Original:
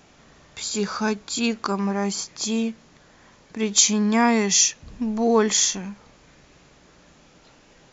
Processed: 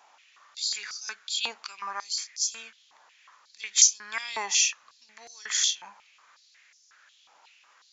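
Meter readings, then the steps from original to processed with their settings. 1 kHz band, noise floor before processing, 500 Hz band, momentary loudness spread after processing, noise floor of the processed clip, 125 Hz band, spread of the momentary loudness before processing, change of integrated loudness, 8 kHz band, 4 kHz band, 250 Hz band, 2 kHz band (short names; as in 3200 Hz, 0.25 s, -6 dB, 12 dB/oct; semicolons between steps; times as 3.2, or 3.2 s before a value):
-11.5 dB, -54 dBFS, -25.0 dB, 20 LU, -62 dBFS, under -35 dB, 13 LU, -4.5 dB, n/a, -2.0 dB, under -35 dB, -4.5 dB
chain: stepped high-pass 5.5 Hz 890–5600 Hz; gain -7 dB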